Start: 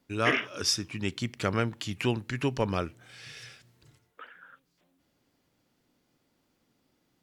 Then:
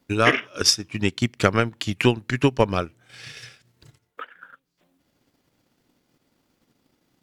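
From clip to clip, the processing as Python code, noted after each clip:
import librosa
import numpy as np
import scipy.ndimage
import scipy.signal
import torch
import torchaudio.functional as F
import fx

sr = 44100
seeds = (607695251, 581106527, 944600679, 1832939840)

y = fx.transient(x, sr, attack_db=8, sustain_db=-8)
y = F.gain(torch.from_numpy(y), 4.5).numpy()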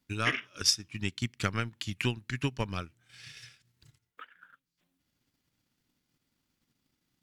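y = fx.peak_eq(x, sr, hz=540.0, db=-11.5, octaves=2.1)
y = F.gain(torch.from_numpy(y), -7.0).numpy()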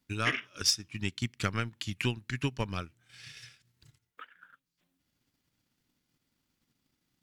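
y = 10.0 ** (-14.0 / 20.0) * np.tanh(x / 10.0 ** (-14.0 / 20.0))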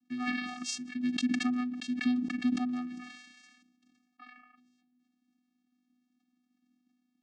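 y = fx.vocoder(x, sr, bands=8, carrier='square', carrier_hz=248.0)
y = fx.sustainer(y, sr, db_per_s=45.0)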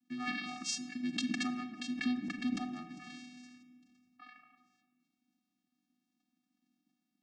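y = fx.room_shoebox(x, sr, seeds[0], volume_m3=2100.0, walls='mixed', distance_m=0.74)
y = F.gain(torch.from_numpy(y), -2.0).numpy()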